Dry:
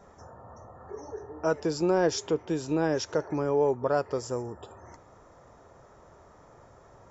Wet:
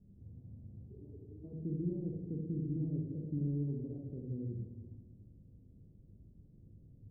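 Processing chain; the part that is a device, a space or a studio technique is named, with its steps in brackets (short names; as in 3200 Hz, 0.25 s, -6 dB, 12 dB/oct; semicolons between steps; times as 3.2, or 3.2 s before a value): club heard from the street (limiter -20.5 dBFS, peak gain reduction 6.5 dB; LPF 240 Hz 24 dB/oct; reverb RT60 1.2 s, pre-delay 20 ms, DRR -1 dB); gain -2 dB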